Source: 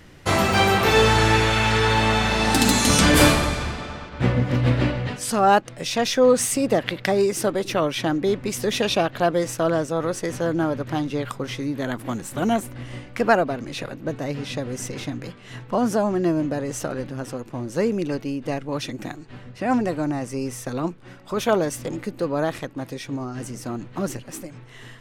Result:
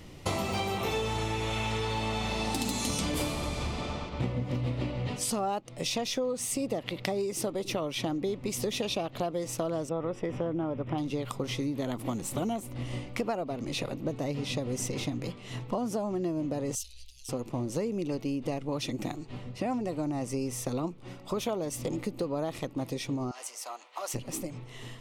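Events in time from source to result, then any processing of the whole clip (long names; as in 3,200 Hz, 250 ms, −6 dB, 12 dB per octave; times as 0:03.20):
0:00.77–0:01.82: notch filter 4,600 Hz, Q 7.9
0:09.89–0:10.98: Savitzky-Golay smoothing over 25 samples
0:16.75–0:17.29: inverse Chebyshev band-stop filter 140–1,400 Hz, stop band 50 dB
0:23.31–0:24.14: high-pass filter 710 Hz 24 dB per octave
whole clip: parametric band 1,600 Hz −13.5 dB 0.42 octaves; downward compressor 10 to 1, threshold −28 dBFS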